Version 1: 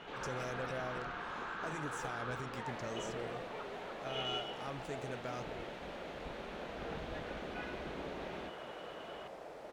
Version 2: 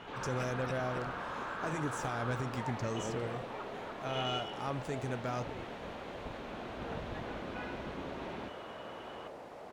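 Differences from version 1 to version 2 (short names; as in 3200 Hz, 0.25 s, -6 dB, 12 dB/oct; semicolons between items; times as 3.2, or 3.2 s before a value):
speech +4.0 dB; second sound: entry -1.85 s; master: add fifteen-band EQ 100 Hz +9 dB, 250 Hz +4 dB, 1000 Hz +4 dB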